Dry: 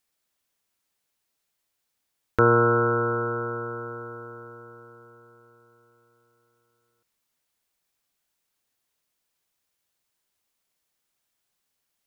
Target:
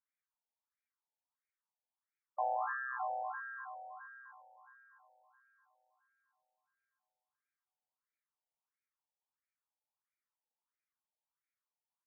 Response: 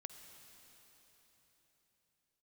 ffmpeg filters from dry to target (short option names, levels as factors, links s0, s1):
-filter_complex "[0:a]equalizer=f=160:t=o:w=0.67:g=12,equalizer=f=630:t=o:w=0.67:g=9,equalizer=f=1600:t=o:w=0.67:g=-6,asplit=2[s0][s1];[s1]adelay=609,lowpass=f=1100:p=1,volume=0.631,asplit=2[s2][s3];[s3]adelay=609,lowpass=f=1100:p=1,volume=0.3,asplit=2[s4][s5];[s5]adelay=609,lowpass=f=1100:p=1,volume=0.3,asplit=2[s6][s7];[s7]adelay=609,lowpass=f=1100:p=1,volume=0.3[s8];[s2][s4][s6][s8]amix=inputs=4:normalize=0[s9];[s0][s9]amix=inputs=2:normalize=0,aeval=exprs='val(0)*sin(2*PI*280*n/s)':c=same,aderivative,afftfilt=real='re*between(b*sr/1024,640*pow(1800/640,0.5+0.5*sin(2*PI*1.5*pts/sr))/1.41,640*pow(1800/640,0.5+0.5*sin(2*PI*1.5*pts/sr))*1.41)':imag='im*between(b*sr/1024,640*pow(1800/640,0.5+0.5*sin(2*PI*1.5*pts/sr))/1.41,640*pow(1800/640,0.5+0.5*sin(2*PI*1.5*pts/sr))*1.41)':win_size=1024:overlap=0.75,volume=2.37"